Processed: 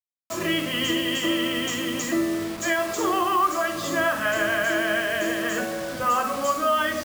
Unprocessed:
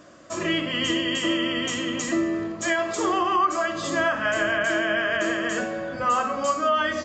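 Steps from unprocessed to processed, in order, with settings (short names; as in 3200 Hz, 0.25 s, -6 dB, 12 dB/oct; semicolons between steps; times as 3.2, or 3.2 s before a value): 5–5.42 bell 1300 Hz -6.5 dB 0.45 oct; bit-crush 6-bit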